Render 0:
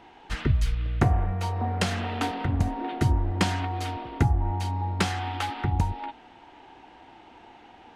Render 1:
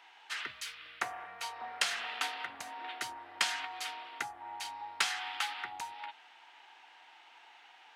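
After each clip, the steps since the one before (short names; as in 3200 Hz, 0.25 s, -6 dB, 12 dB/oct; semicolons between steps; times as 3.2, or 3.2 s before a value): HPF 1400 Hz 12 dB/oct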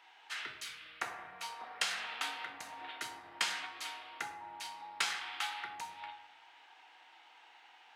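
shoebox room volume 170 m³, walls mixed, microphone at 0.6 m; gain -3.5 dB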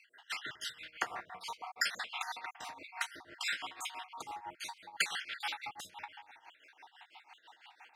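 random spectral dropouts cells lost 52%; tremolo 6 Hz, depth 79%; gain +7.5 dB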